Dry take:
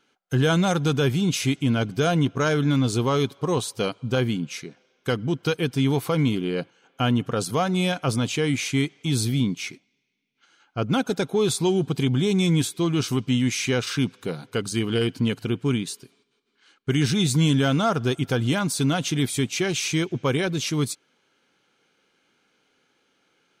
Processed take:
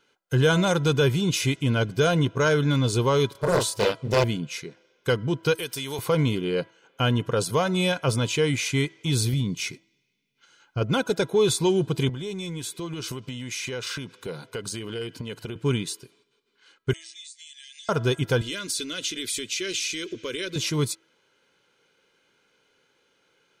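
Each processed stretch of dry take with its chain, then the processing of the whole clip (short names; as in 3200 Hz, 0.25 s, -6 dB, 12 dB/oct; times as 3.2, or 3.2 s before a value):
3.32–4.24 high shelf 5500 Hz +4 dB + doubler 29 ms -3 dB + Doppler distortion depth 0.99 ms
5.55–5.99 RIAA curve recording + compressor 2.5:1, threshold -30 dBFS
9.33–10.81 tone controls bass +6 dB, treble +4 dB + compressor 3:1, threshold -22 dBFS
12.09–15.56 HPF 140 Hz 6 dB/oct + compressor 12:1, threshold -28 dBFS
16.93–17.89 brick-wall FIR band-pass 1600–9300 Hz + differentiator + compressor, threshold -42 dBFS
18.41–20.56 bell 4200 Hz +8.5 dB 2.9 oct + compressor, threshold -25 dBFS + fixed phaser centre 340 Hz, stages 4
whole clip: comb 2 ms, depth 42%; de-hum 327.5 Hz, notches 6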